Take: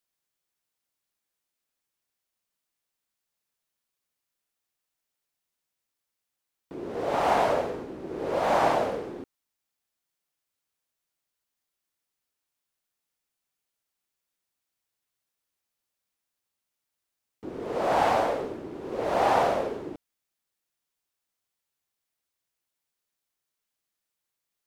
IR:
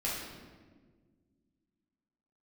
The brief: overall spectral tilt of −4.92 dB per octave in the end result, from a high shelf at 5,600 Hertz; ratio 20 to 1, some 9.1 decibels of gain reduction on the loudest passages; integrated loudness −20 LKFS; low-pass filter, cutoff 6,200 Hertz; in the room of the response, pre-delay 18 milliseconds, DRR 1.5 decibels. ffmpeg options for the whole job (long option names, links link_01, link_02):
-filter_complex "[0:a]lowpass=6200,highshelf=frequency=5600:gain=-8.5,acompressor=threshold=-27dB:ratio=20,asplit=2[link_01][link_02];[1:a]atrim=start_sample=2205,adelay=18[link_03];[link_02][link_03]afir=irnorm=-1:irlink=0,volume=-7dB[link_04];[link_01][link_04]amix=inputs=2:normalize=0,volume=11dB"